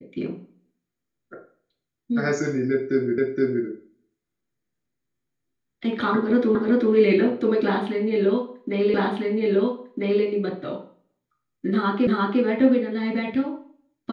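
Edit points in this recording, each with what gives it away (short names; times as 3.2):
3.18 repeat of the last 0.47 s
6.55 repeat of the last 0.38 s
8.94 repeat of the last 1.3 s
12.07 repeat of the last 0.35 s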